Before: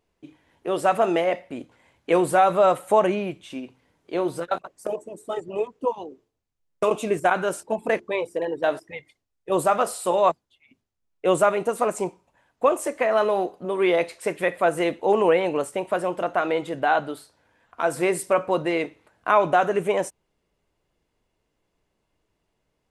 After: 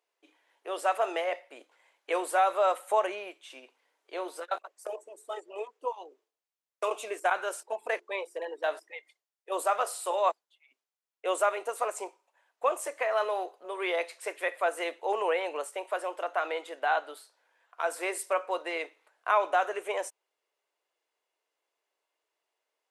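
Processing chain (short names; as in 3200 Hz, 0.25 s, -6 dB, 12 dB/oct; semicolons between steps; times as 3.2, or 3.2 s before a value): Bessel high-pass 650 Hz, order 6; gain -4.5 dB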